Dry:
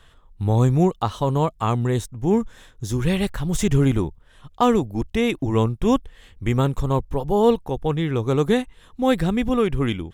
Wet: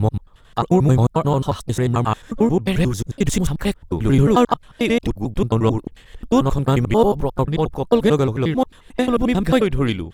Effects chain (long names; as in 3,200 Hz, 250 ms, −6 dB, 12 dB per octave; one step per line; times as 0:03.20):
slices reordered back to front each 89 ms, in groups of 6
pitch-shifted copies added +5 semitones −18 dB
level +3 dB